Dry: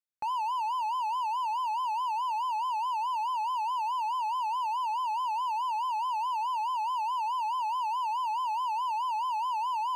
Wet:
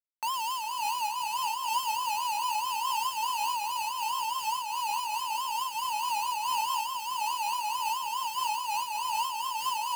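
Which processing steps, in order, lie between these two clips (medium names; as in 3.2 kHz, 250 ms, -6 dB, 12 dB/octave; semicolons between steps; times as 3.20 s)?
high-pass 970 Hz 12 dB/octave; peaking EQ 4 kHz +7 dB 0.53 oct; vibrato 0.77 Hz 61 cents; comb of notches 1.5 kHz; Schmitt trigger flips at -52 dBFS; on a send: two-band feedback delay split 2.6 kHz, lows 413 ms, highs 110 ms, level -6 dB; on the sum: random flutter of the level, depth 60%; trim +5 dB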